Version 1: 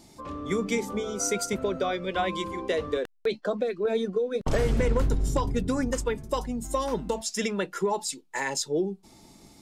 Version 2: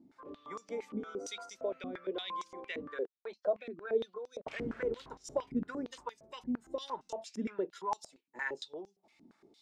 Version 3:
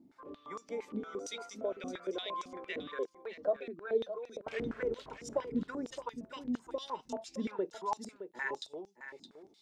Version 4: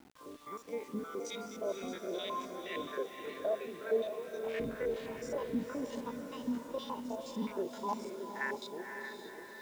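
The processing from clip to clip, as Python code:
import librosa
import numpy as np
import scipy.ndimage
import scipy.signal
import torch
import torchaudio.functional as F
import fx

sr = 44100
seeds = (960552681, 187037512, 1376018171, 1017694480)

y1 = fx.filter_held_bandpass(x, sr, hz=8.7, low_hz=260.0, high_hz=5700.0)
y2 = y1 + 10.0 ** (-11.0 / 20.0) * np.pad(y1, (int(617 * sr / 1000.0), 0))[:len(y1)]
y3 = fx.spec_steps(y2, sr, hold_ms=50)
y3 = fx.echo_diffused(y3, sr, ms=501, feedback_pct=54, wet_db=-6.5)
y3 = fx.quant_dither(y3, sr, seeds[0], bits=10, dither='none')
y3 = y3 * librosa.db_to_amplitude(1.0)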